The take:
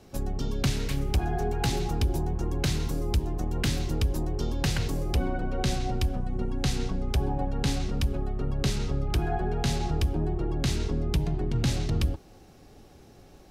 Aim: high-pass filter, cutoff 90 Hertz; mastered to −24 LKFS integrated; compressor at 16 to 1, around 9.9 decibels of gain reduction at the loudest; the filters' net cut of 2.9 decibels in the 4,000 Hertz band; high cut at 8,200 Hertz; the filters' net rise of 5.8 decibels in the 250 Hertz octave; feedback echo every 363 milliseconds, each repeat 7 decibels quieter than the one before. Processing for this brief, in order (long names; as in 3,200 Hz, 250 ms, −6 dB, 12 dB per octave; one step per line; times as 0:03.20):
high-pass filter 90 Hz
low-pass filter 8,200 Hz
parametric band 250 Hz +8 dB
parametric band 4,000 Hz −3.5 dB
downward compressor 16 to 1, threshold −29 dBFS
repeating echo 363 ms, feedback 45%, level −7 dB
level +9.5 dB